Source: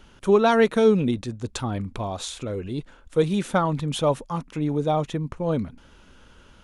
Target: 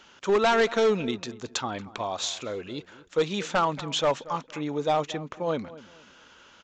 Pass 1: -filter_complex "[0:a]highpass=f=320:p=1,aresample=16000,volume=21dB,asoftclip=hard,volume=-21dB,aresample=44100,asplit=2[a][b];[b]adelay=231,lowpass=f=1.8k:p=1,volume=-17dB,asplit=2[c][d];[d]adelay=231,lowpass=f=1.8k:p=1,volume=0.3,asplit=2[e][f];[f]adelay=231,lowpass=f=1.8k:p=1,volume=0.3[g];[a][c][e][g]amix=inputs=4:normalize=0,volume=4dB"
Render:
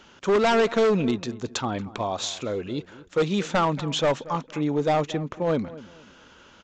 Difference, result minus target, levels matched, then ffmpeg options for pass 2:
250 Hz band +3.5 dB
-filter_complex "[0:a]highpass=f=850:p=1,aresample=16000,volume=21dB,asoftclip=hard,volume=-21dB,aresample=44100,asplit=2[a][b];[b]adelay=231,lowpass=f=1.8k:p=1,volume=-17dB,asplit=2[c][d];[d]adelay=231,lowpass=f=1.8k:p=1,volume=0.3,asplit=2[e][f];[f]adelay=231,lowpass=f=1.8k:p=1,volume=0.3[g];[a][c][e][g]amix=inputs=4:normalize=0,volume=4dB"

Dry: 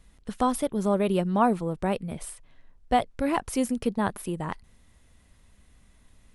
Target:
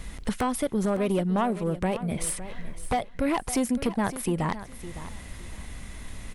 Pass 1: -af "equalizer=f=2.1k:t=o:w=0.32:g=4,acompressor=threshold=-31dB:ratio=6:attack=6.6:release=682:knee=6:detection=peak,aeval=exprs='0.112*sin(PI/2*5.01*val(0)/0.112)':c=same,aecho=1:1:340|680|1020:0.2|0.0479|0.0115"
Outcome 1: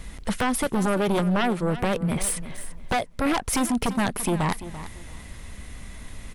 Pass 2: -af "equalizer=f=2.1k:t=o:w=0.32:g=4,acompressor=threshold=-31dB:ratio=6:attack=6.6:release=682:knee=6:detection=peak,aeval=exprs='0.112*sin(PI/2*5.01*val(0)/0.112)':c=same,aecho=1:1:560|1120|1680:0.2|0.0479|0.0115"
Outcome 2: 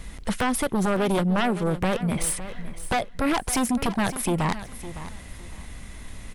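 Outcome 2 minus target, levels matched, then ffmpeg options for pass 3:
compressor: peak gain reduction -6 dB
-af "equalizer=f=2.1k:t=o:w=0.32:g=4,acompressor=threshold=-38dB:ratio=6:attack=6.6:release=682:knee=6:detection=peak,aeval=exprs='0.112*sin(PI/2*5.01*val(0)/0.112)':c=same,aecho=1:1:560|1120|1680:0.2|0.0479|0.0115"

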